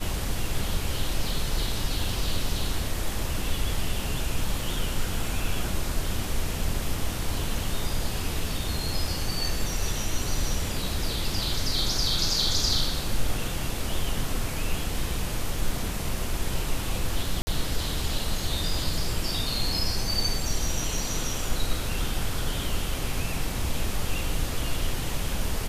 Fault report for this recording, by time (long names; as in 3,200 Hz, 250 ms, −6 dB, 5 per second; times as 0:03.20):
0:17.42–0:17.47: drop-out 50 ms